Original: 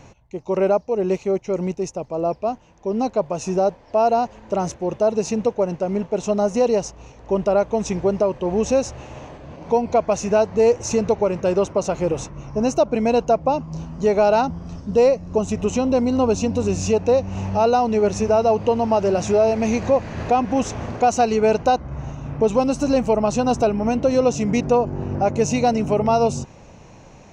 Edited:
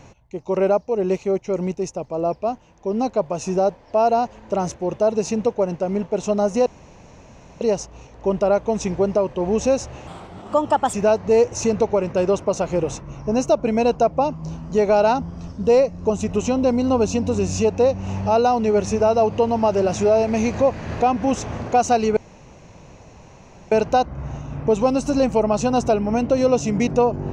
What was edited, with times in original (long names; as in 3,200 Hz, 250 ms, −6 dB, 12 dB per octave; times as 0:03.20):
0:06.66: splice in room tone 0.95 s
0:09.12–0:10.22: play speed 127%
0:21.45: splice in room tone 1.55 s